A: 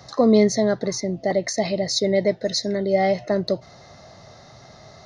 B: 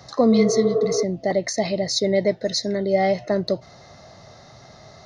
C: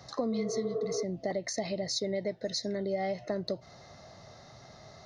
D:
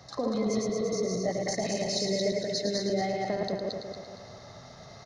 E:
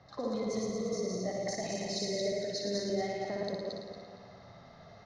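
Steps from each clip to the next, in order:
healed spectral selection 0:00.34–0:01.01, 260–1,900 Hz before
downward compressor 4 to 1, threshold −24 dBFS, peak gain reduction 10.5 dB; level −6 dB
feedback delay that plays each chunk backwards 116 ms, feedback 64%, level −1.5 dB; single-tap delay 109 ms −7 dB
flutter between parallel walls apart 10.2 metres, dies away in 0.64 s; low-pass that shuts in the quiet parts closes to 2,800 Hz, open at −22.5 dBFS; level −6.5 dB

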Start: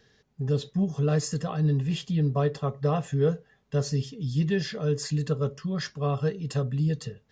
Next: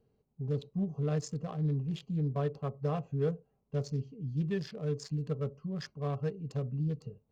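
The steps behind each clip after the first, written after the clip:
adaptive Wiener filter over 25 samples
level −7 dB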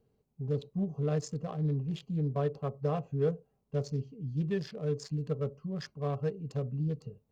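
dynamic equaliser 530 Hz, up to +3 dB, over −43 dBFS, Q 1.1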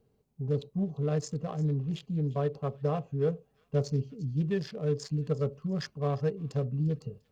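speech leveller within 3 dB 0.5 s
delay with a high-pass on its return 348 ms, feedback 34%, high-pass 2,000 Hz, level −18.5 dB
level +2.5 dB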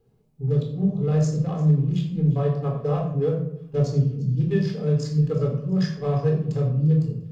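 convolution reverb RT60 0.65 s, pre-delay 17 ms, DRR 0 dB

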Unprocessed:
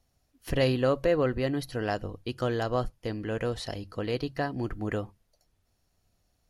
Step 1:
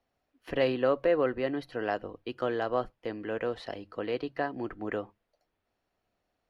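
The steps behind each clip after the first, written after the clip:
three-way crossover with the lows and the highs turned down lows −15 dB, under 240 Hz, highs −19 dB, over 3,400 Hz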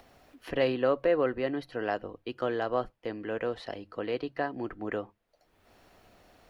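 upward compression, threshold −41 dBFS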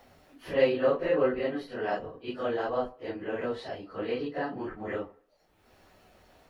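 random phases in long frames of 100 ms
on a send at −13.5 dB: convolution reverb RT60 0.55 s, pre-delay 3 ms

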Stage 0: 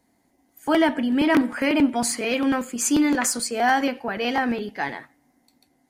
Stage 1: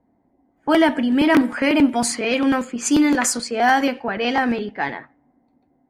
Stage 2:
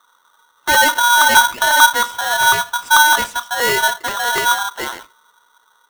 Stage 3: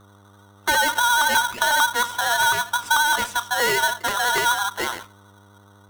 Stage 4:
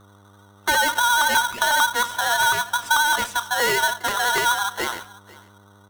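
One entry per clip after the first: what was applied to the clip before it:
low-pass that shuts in the quiet parts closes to 910 Hz, open at −17.5 dBFS; level +3.5 dB
spectral tilt −4.5 dB per octave; ring modulator with a square carrier 1,200 Hz; level −3 dB
downward compressor 5 to 1, threshold −16 dBFS, peak gain reduction 10 dB; hum with harmonics 100 Hz, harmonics 13, −51 dBFS −5 dB per octave; pitch vibrato 12 Hz 40 cents; level −1 dB
single-tap delay 495 ms −22 dB

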